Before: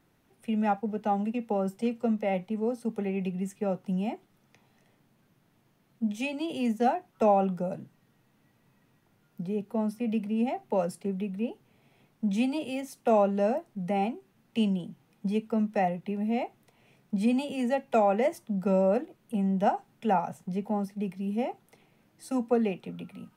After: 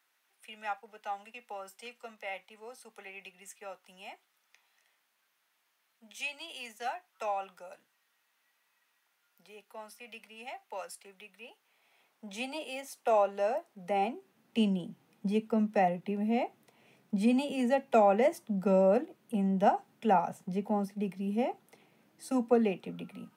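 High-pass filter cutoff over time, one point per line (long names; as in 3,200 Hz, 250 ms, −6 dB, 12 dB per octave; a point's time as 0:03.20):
0:11.44 1,300 Hz
0:12.25 620 Hz
0:13.49 620 Hz
0:14.58 180 Hz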